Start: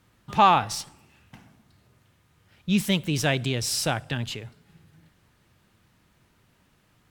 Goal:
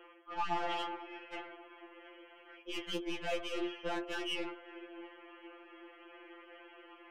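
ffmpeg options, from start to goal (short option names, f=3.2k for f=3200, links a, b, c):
-filter_complex "[0:a]afftfilt=real='re*between(b*sr/4096,300,3300)':imag='im*between(b*sr/4096,300,3300)':win_size=4096:overlap=0.75,bandreject=f=50:t=h:w=6,bandreject=f=100:t=h:w=6,bandreject=f=150:t=h:w=6,bandreject=f=200:t=h:w=6,bandreject=f=250:t=h:w=6,bandreject=f=300:t=h:w=6,bandreject=f=350:t=h:w=6,bandreject=f=400:t=h:w=6,bandreject=f=450:t=h:w=6,acrossover=split=510|1800[a][b][c];[a]acontrast=83[d];[d][b][c]amix=inputs=3:normalize=0,alimiter=limit=-16.5dB:level=0:latency=1:release=82,areverse,acompressor=threshold=-44dB:ratio=5,areverse,aeval=exprs='(tanh(158*val(0)+0.3)-tanh(0.3))/158':c=same,afftfilt=real='re*2.83*eq(mod(b,8),0)':imag='im*2.83*eq(mod(b,8),0)':win_size=2048:overlap=0.75,volume=14.5dB"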